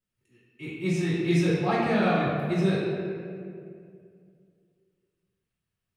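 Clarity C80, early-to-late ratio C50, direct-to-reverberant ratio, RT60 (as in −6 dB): 0.5 dB, −1.5 dB, −11.5 dB, 2.3 s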